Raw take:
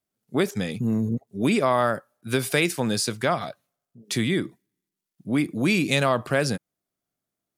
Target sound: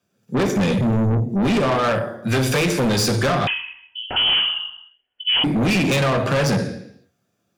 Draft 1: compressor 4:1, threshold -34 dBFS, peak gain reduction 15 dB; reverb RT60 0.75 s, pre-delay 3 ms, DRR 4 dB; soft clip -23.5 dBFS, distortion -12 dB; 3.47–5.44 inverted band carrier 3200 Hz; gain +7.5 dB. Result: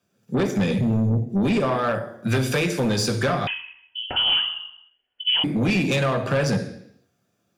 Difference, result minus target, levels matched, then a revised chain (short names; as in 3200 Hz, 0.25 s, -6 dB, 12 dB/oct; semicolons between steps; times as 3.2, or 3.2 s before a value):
compressor: peak gain reduction +8 dB
compressor 4:1, threshold -23.5 dBFS, peak gain reduction 7 dB; reverb RT60 0.75 s, pre-delay 3 ms, DRR 4 dB; soft clip -23.5 dBFS, distortion -6 dB; 3.47–5.44 inverted band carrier 3200 Hz; gain +7.5 dB